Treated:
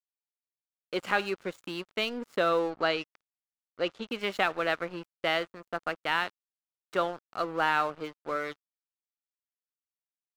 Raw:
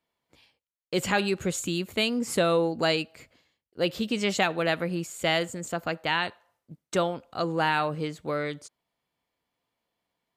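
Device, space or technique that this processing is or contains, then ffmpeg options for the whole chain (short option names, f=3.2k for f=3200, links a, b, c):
pocket radio on a weak battery: -filter_complex "[0:a]highpass=300,lowpass=3.6k,aeval=exprs='sgn(val(0))*max(abs(val(0))-0.00841,0)':c=same,equalizer=f=1.3k:t=o:w=0.51:g=6,asettb=1/sr,asplit=3[a][b][c];[a]atrim=end=2.704[d];[b]atrim=start=2.7:end=4.11,asetpts=PTS-STARTPTS,afade=t=in:d=0.004:c=qsin,afade=t=out:st=1.406:d=0.004:c=qsin,lowpass=6k[e];[c]atrim=start=4.106[f];[d][e]acrossfade=d=0.004:c1=hsin:c2=qsin[g];[g][f]acrossfade=d=0.004:c1=qsin:c2=hsin,volume=-2dB"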